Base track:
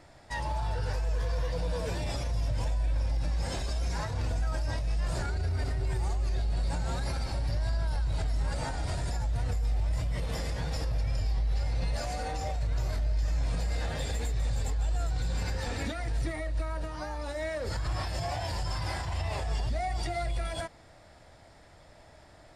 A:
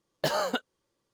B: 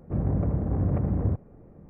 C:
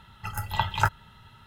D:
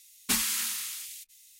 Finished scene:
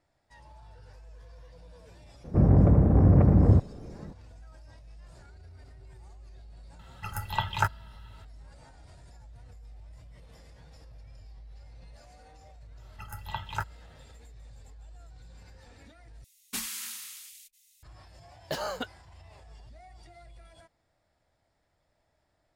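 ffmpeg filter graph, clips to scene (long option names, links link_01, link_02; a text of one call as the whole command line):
ffmpeg -i bed.wav -i cue0.wav -i cue1.wav -i cue2.wav -i cue3.wav -filter_complex "[3:a]asplit=2[link_01][link_02];[0:a]volume=-20dB[link_03];[2:a]acontrast=87[link_04];[link_03]asplit=2[link_05][link_06];[link_05]atrim=end=16.244[link_07];[4:a]atrim=end=1.59,asetpts=PTS-STARTPTS,volume=-8dB[link_08];[link_06]atrim=start=17.826[link_09];[link_04]atrim=end=1.89,asetpts=PTS-STARTPTS,volume=-0.5dB,afade=type=in:duration=0.004:curve=hsin,afade=type=out:start_time=1.886:duration=0.004:curve=hsin,adelay=2240[link_10];[link_01]atrim=end=1.46,asetpts=PTS-STARTPTS,volume=-3dB,afade=type=in:duration=0.004:curve=hsin,afade=type=out:start_time=1.456:duration=0.004:curve=hsin,adelay=6790[link_11];[link_02]atrim=end=1.46,asetpts=PTS-STARTPTS,volume=-10dB,afade=type=in:duration=0.1,afade=type=out:start_time=1.36:duration=0.1,adelay=12750[link_12];[1:a]atrim=end=1.13,asetpts=PTS-STARTPTS,volume=-5.5dB,afade=type=in:duration=0.004:curve=hsin,afade=type=out:start_time=1.126:duration=0.004:curve=hsin,adelay=18270[link_13];[link_07][link_08]acrossfade=duration=0.004:curve1=hsin:curve2=hsin[link_14];[link_14][link_09]acrossfade=duration=0.004:curve1=hsin:curve2=hsin[link_15];[link_15][link_10][link_11][link_12][link_13]amix=inputs=5:normalize=0" out.wav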